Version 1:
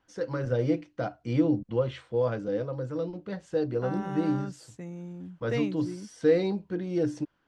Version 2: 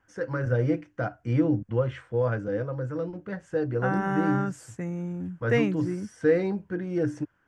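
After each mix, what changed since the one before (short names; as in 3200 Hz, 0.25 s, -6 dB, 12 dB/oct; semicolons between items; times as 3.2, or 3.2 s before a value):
second voice +6.5 dB; master: add fifteen-band EQ 100 Hz +9 dB, 1600 Hz +8 dB, 4000 Hz -11 dB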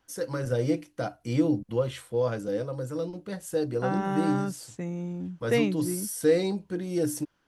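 first voice: remove Gaussian blur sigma 1.8 samples; master: add fifteen-band EQ 100 Hz -9 dB, 1600 Hz -8 dB, 4000 Hz +11 dB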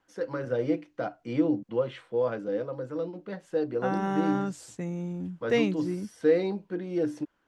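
first voice: add BPF 200–2700 Hz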